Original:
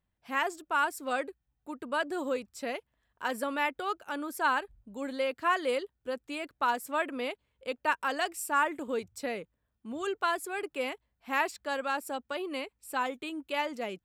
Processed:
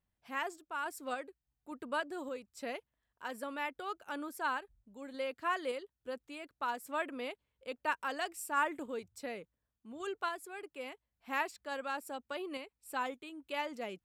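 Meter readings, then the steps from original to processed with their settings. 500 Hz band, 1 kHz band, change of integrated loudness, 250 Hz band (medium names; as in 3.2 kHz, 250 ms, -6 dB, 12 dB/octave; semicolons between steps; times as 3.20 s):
-7.0 dB, -6.5 dB, -6.5 dB, -7.0 dB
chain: random-step tremolo; trim -4 dB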